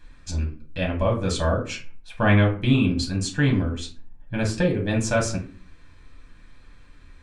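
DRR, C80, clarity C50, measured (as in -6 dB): -1.0 dB, 15.5 dB, 9.5 dB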